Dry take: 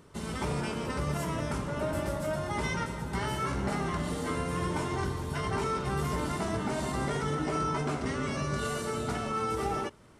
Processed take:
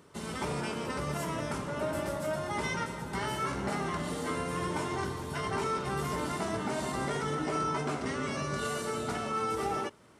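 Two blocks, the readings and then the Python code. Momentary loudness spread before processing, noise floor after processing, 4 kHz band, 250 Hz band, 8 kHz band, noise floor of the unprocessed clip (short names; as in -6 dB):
2 LU, -40 dBFS, 0.0 dB, -2.0 dB, 0.0 dB, -38 dBFS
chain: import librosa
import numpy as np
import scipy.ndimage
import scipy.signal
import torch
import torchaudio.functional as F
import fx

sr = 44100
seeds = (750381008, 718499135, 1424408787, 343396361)

y = scipy.signal.sosfilt(scipy.signal.butter(2, 55.0, 'highpass', fs=sr, output='sos'), x)
y = fx.low_shelf(y, sr, hz=130.0, db=-9.0)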